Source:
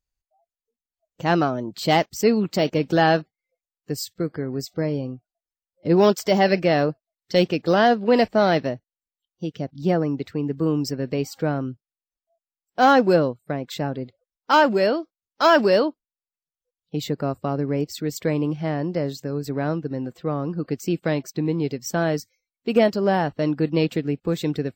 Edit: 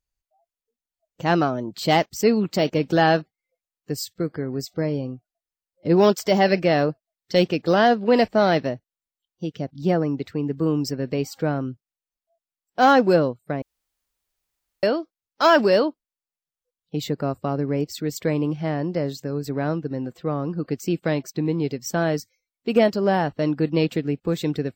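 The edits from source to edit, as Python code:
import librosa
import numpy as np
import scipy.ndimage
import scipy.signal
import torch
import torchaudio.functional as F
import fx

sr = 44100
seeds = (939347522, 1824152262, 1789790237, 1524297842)

y = fx.edit(x, sr, fx.room_tone_fill(start_s=13.62, length_s=1.21), tone=tone)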